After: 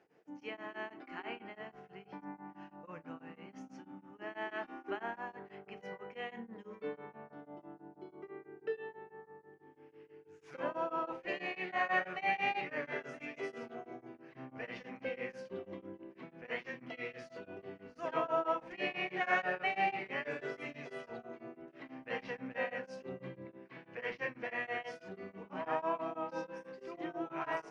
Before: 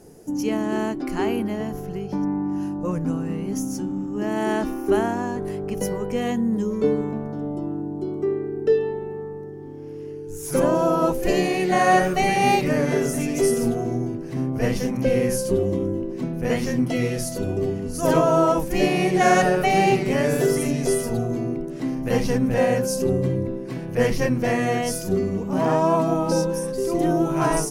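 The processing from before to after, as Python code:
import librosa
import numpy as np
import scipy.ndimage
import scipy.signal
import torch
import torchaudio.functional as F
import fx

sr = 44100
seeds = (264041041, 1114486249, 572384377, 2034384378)

y = scipy.signal.sosfilt(scipy.signal.butter(4, 2400.0, 'lowpass', fs=sr, output='sos'), x)
y = np.diff(y, prepend=0.0)
y = fx.room_shoebox(y, sr, seeds[0], volume_m3=310.0, walls='furnished', distance_m=0.6)
y = y * np.abs(np.cos(np.pi * 6.1 * np.arange(len(y)) / sr))
y = y * 10.0 ** (5.5 / 20.0)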